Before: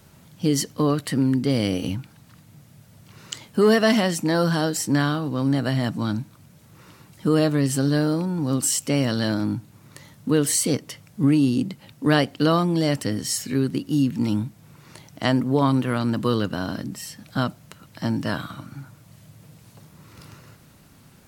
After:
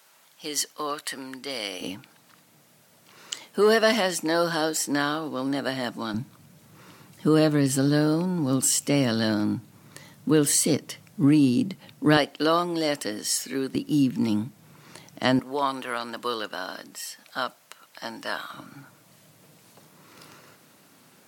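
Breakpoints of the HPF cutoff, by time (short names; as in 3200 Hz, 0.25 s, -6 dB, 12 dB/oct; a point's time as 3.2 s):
790 Hz
from 1.81 s 350 Hz
from 6.14 s 140 Hz
from 12.17 s 380 Hz
from 13.75 s 170 Hz
from 15.39 s 630 Hz
from 18.54 s 270 Hz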